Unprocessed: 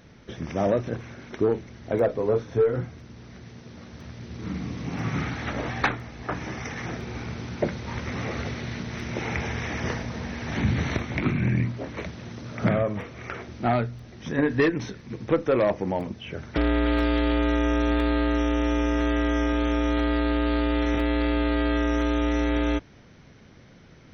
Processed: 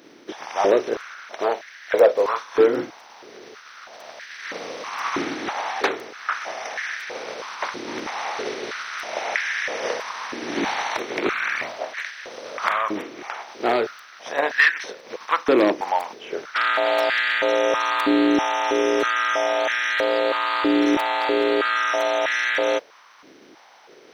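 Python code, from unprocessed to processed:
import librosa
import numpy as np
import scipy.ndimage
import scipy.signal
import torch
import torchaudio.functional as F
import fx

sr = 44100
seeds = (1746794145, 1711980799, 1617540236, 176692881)

y = fx.spec_flatten(x, sr, power=0.66)
y = fx.filter_held_highpass(y, sr, hz=3.1, low_hz=320.0, high_hz=1700.0)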